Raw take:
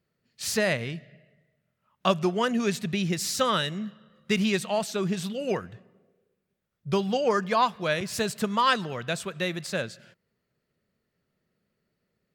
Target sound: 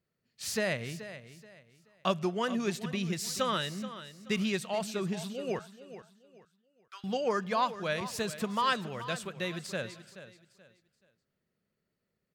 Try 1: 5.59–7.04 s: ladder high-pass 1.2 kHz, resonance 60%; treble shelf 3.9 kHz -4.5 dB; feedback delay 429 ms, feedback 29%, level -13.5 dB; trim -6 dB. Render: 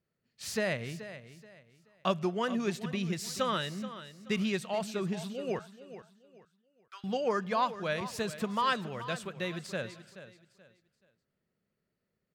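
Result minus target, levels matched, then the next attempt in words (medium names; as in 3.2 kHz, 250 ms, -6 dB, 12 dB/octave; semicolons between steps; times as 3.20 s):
8 kHz band -3.0 dB
5.59–7.04 s: ladder high-pass 1.2 kHz, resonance 60%; feedback delay 429 ms, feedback 29%, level -13.5 dB; trim -6 dB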